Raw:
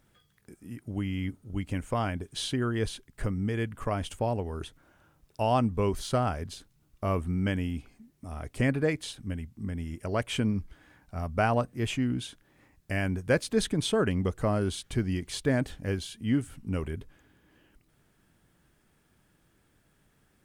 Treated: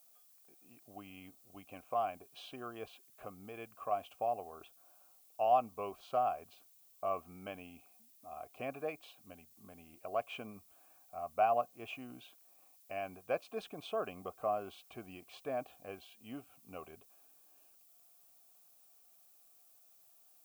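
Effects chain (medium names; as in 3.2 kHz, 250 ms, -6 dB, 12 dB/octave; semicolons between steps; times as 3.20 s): vowel filter a; added noise violet -67 dBFS; trim +2.5 dB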